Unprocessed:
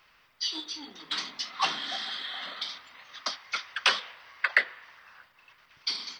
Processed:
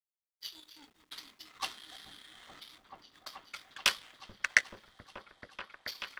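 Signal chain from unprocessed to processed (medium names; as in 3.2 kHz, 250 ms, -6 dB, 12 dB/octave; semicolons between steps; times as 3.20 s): level-controlled noise filter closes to 1.8 kHz, open at -23.5 dBFS; treble shelf 2.6 kHz +6 dB; in parallel at -1.5 dB: compressor with a negative ratio -42 dBFS, ratio -1; on the sum: power-law waveshaper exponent 2; bit crusher 12-bit; delay with an opening low-pass 432 ms, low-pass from 200 Hz, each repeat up 1 oct, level 0 dB; trim +1.5 dB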